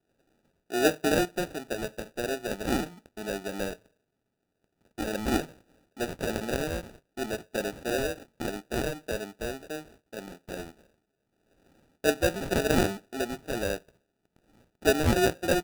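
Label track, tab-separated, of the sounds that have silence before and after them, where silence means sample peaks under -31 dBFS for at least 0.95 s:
4.990000	10.600000	sound
12.040000	13.760000	sound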